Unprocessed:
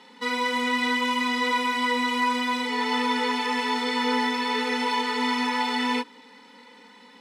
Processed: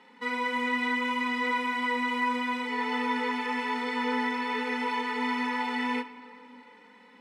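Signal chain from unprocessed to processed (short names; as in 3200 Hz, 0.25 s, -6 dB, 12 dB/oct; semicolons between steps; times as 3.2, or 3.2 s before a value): resonant high shelf 3000 Hz -6.5 dB, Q 1.5; on a send: reverb RT60 2.9 s, pre-delay 6 ms, DRR 12 dB; on the sum: gain -5 dB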